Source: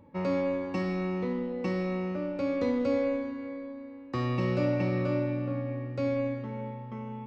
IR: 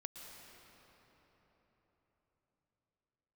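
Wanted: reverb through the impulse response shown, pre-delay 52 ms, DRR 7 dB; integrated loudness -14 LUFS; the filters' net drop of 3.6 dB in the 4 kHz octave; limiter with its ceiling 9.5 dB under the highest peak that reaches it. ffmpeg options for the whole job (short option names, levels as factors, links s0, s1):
-filter_complex "[0:a]equalizer=f=4000:t=o:g=-5,alimiter=level_in=1.26:limit=0.0631:level=0:latency=1,volume=0.794,asplit=2[s0][s1];[1:a]atrim=start_sample=2205,adelay=52[s2];[s1][s2]afir=irnorm=-1:irlink=0,volume=0.668[s3];[s0][s3]amix=inputs=2:normalize=0,volume=10"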